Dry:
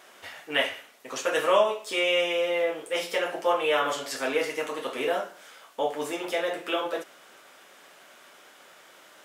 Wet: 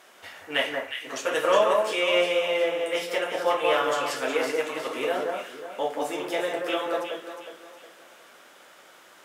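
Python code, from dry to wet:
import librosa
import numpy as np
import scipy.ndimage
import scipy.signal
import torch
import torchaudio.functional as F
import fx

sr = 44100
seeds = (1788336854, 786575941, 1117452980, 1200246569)

y = fx.echo_alternate(x, sr, ms=181, hz=1700.0, feedback_pct=60, wet_db=-2)
y = fx.cheby_harmonics(y, sr, harmonics=(7,), levels_db=(-35,), full_scale_db=-8.0)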